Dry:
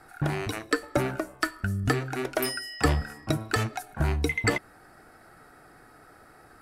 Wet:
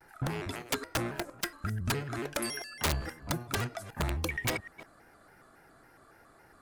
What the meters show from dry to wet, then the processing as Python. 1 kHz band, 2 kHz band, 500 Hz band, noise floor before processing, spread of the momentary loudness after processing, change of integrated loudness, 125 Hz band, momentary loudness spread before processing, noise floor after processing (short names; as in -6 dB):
-5.5 dB, -6.5 dB, -7.5 dB, -54 dBFS, 6 LU, -5.5 dB, -6.5 dB, 5 LU, -60 dBFS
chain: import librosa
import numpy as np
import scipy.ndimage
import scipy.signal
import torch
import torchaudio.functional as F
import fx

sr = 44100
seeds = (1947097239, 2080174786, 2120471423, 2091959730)

y = fx.reverse_delay(x, sr, ms=156, wet_db=-12.5)
y = (np.mod(10.0 ** (15.5 / 20.0) * y + 1.0, 2.0) - 1.0) / 10.0 ** (15.5 / 20.0)
y = fx.vibrato_shape(y, sr, shape='square', rate_hz=3.6, depth_cents=160.0)
y = F.gain(torch.from_numpy(y), -6.0).numpy()